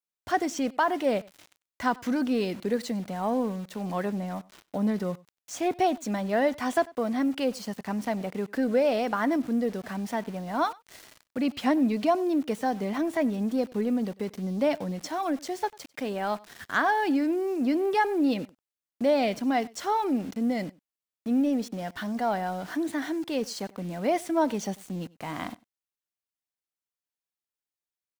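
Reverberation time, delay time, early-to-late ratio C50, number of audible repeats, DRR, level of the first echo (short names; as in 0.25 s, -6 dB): none, 96 ms, none, 1, none, -23.5 dB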